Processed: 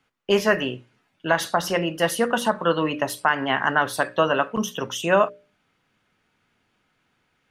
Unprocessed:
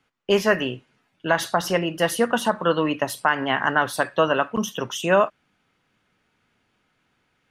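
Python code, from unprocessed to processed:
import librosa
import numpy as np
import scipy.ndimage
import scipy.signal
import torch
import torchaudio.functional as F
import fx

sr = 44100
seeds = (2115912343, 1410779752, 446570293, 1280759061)

y = fx.hum_notches(x, sr, base_hz=60, count=10)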